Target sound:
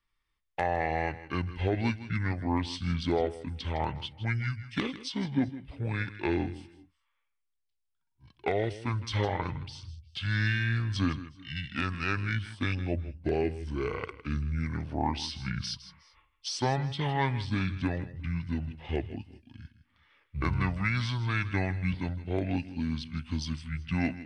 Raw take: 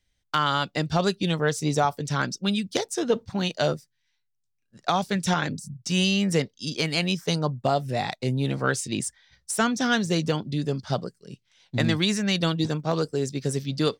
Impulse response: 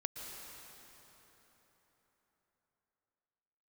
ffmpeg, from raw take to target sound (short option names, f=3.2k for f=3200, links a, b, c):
-filter_complex "[0:a]asplit=2[a][b];[b]equalizer=f=1.2k:w=2.8:g=-8[c];[1:a]atrim=start_sample=2205,atrim=end_sample=6174,adelay=92[d];[c][d]afir=irnorm=-1:irlink=0,volume=-11.5dB[e];[a][e]amix=inputs=2:normalize=0,asetrate=25442,aresample=44100,volume=-6dB"